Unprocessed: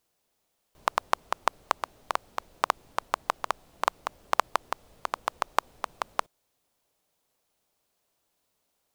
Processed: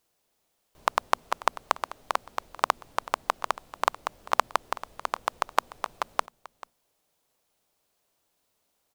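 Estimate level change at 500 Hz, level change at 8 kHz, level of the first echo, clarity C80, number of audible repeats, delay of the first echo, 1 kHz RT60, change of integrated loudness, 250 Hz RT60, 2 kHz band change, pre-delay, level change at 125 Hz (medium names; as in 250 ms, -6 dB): +1.5 dB, +1.5 dB, -17.5 dB, no reverb, 1, 439 ms, no reverb, +1.5 dB, no reverb, +1.5 dB, no reverb, no reading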